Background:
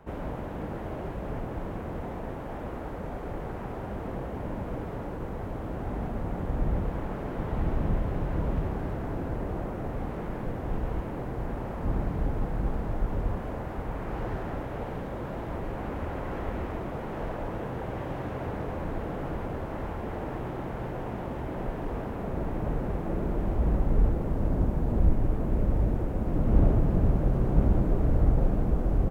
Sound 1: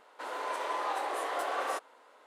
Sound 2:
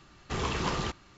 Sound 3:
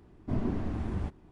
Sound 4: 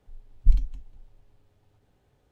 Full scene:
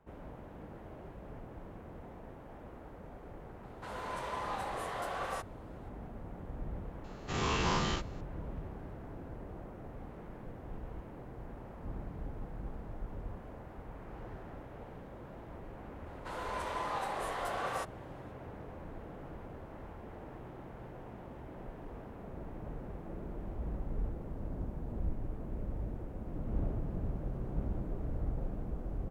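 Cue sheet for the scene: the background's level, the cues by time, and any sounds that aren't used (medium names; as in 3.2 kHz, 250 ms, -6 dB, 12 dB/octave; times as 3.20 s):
background -13.5 dB
3.63 s: add 1 -5 dB
7.04 s: add 2 -6 dB + every event in the spectrogram widened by 120 ms
16.06 s: add 1 -3.5 dB
not used: 3, 4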